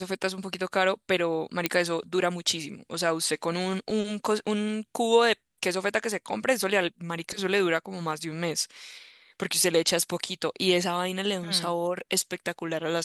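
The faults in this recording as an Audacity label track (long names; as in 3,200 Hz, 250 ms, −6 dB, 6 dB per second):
1.660000	1.660000	click −7 dBFS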